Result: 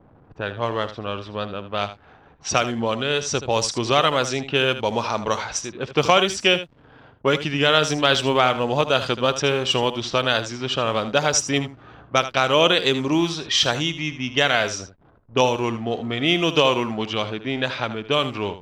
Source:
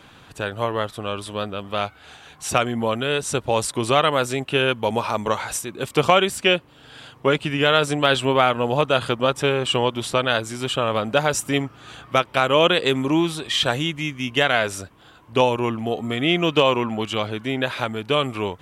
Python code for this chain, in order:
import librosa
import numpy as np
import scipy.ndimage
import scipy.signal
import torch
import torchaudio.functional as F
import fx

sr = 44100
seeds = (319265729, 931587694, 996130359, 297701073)

y = fx.lowpass_res(x, sr, hz=5700.0, q=3.9)
y = fx.backlash(y, sr, play_db=-39.0)
y = fx.env_lowpass(y, sr, base_hz=920.0, full_db=-15.5)
y = y + 10.0 ** (-12.5 / 20.0) * np.pad(y, (int(78 * sr / 1000.0), 0))[:len(y)]
y = F.gain(torch.from_numpy(y), -1.0).numpy()